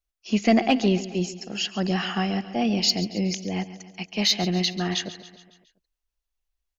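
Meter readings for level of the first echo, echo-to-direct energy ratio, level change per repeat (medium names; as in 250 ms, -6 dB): -15.0 dB, -13.5 dB, -5.0 dB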